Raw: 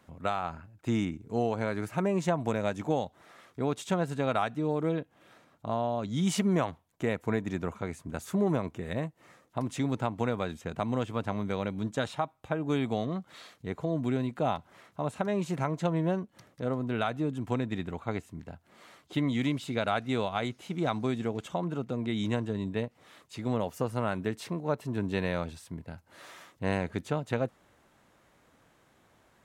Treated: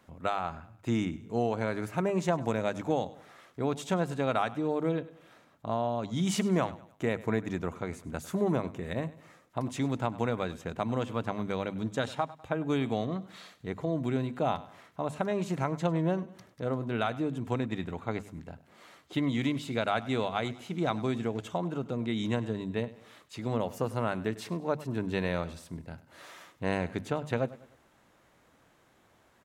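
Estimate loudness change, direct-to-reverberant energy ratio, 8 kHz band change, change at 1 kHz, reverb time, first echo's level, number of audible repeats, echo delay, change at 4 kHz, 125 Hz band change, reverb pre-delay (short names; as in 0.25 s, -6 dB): -0.5 dB, none, -0.5 dB, 0.0 dB, none, -18.0 dB, 3, 0.1 s, 0.0 dB, -1.0 dB, none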